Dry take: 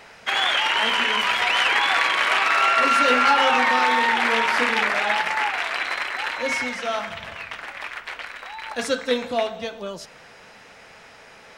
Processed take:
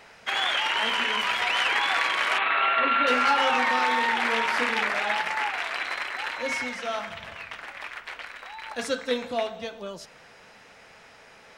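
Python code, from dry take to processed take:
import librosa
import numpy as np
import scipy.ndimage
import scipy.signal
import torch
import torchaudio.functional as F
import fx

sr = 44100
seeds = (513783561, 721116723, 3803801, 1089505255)

y = fx.steep_lowpass(x, sr, hz=3900.0, slope=72, at=(2.38, 3.07))
y = y * librosa.db_to_amplitude(-4.5)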